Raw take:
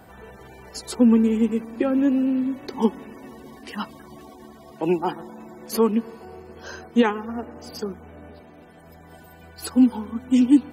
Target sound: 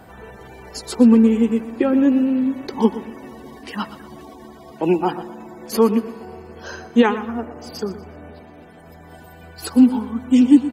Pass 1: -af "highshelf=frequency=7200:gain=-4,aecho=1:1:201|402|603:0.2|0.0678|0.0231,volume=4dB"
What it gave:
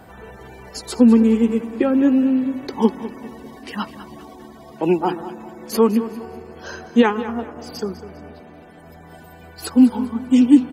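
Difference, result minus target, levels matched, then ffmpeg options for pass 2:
echo 81 ms late
-af "highshelf=frequency=7200:gain=-4,aecho=1:1:120|240|360:0.2|0.0678|0.0231,volume=4dB"

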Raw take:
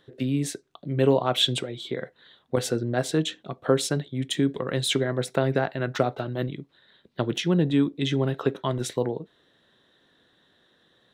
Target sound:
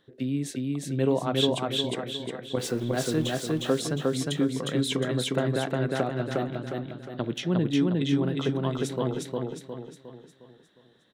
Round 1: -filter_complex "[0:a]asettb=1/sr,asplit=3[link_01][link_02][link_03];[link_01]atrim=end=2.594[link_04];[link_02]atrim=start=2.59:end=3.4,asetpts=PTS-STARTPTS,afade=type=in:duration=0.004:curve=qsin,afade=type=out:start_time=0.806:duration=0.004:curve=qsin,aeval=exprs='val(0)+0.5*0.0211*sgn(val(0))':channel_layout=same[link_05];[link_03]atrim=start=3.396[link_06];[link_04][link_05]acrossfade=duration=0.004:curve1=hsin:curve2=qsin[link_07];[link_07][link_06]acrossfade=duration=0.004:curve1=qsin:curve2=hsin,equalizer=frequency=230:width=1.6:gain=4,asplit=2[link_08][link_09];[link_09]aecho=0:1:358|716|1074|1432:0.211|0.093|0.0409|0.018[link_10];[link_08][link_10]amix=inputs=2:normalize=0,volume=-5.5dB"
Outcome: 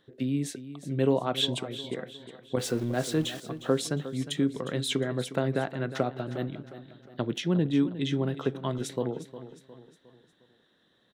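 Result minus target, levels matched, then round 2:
echo-to-direct −12 dB
-filter_complex "[0:a]asettb=1/sr,asplit=3[link_01][link_02][link_03];[link_01]atrim=end=2.594[link_04];[link_02]atrim=start=2.59:end=3.4,asetpts=PTS-STARTPTS,afade=type=in:duration=0.004:curve=qsin,afade=type=out:start_time=0.806:duration=0.004:curve=qsin,aeval=exprs='val(0)+0.5*0.0211*sgn(val(0))':channel_layout=same[link_05];[link_03]atrim=start=3.396[link_06];[link_04][link_05]acrossfade=duration=0.004:curve1=hsin:curve2=qsin[link_07];[link_07][link_06]acrossfade=duration=0.004:curve1=qsin:curve2=hsin,equalizer=frequency=230:width=1.6:gain=4,asplit=2[link_08][link_09];[link_09]aecho=0:1:358|716|1074|1432|1790|2148:0.841|0.37|0.163|0.0717|0.0315|0.0139[link_10];[link_08][link_10]amix=inputs=2:normalize=0,volume=-5.5dB"

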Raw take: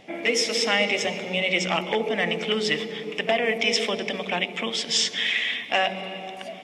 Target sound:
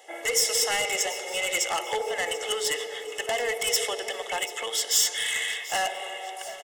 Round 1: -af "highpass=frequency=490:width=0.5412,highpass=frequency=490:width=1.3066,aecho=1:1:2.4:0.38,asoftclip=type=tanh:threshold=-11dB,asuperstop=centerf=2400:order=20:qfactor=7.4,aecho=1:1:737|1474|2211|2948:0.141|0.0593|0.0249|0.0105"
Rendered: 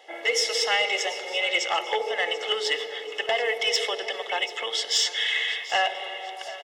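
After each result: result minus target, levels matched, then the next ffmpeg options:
8,000 Hz band −8.5 dB; soft clipping: distortion −12 dB
-af "highpass=frequency=490:width=0.5412,highpass=frequency=490:width=1.3066,aecho=1:1:2.4:0.38,asoftclip=type=tanh:threshold=-11dB,asuperstop=centerf=2400:order=20:qfactor=7.4,highshelf=frequency=6000:width_type=q:width=1.5:gain=10.5,aecho=1:1:737|1474|2211|2948:0.141|0.0593|0.0249|0.0105"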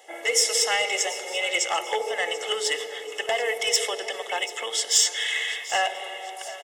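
soft clipping: distortion −12 dB
-af "highpass=frequency=490:width=0.5412,highpass=frequency=490:width=1.3066,aecho=1:1:2.4:0.38,asoftclip=type=tanh:threshold=-20.5dB,asuperstop=centerf=2400:order=20:qfactor=7.4,highshelf=frequency=6000:width_type=q:width=1.5:gain=10.5,aecho=1:1:737|1474|2211|2948:0.141|0.0593|0.0249|0.0105"

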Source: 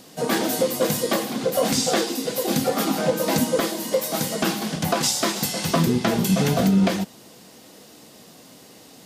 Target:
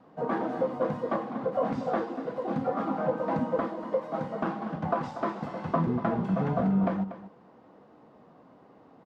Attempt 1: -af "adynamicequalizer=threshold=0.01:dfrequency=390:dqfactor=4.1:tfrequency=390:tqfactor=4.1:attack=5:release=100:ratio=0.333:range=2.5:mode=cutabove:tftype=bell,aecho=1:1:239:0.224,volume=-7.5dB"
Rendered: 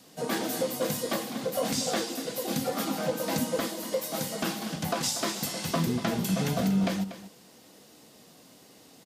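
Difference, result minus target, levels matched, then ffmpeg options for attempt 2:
1,000 Hz band −4.0 dB
-af "adynamicequalizer=threshold=0.01:dfrequency=390:dqfactor=4.1:tfrequency=390:tqfactor=4.1:attack=5:release=100:ratio=0.333:range=2.5:mode=cutabove:tftype=bell,lowpass=frequency=1100:width_type=q:width=1.7,aecho=1:1:239:0.224,volume=-7.5dB"

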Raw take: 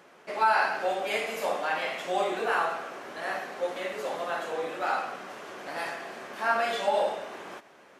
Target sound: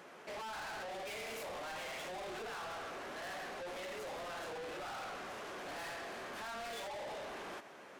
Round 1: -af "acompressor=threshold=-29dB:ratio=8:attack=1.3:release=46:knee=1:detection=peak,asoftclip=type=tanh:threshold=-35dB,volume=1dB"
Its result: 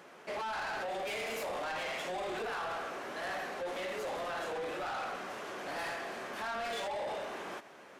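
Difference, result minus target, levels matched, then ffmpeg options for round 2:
soft clipping: distortion −5 dB
-af "acompressor=threshold=-29dB:ratio=8:attack=1.3:release=46:knee=1:detection=peak,asoftclip=type=tanh:threshold=-43.5dB,volume=1dB"

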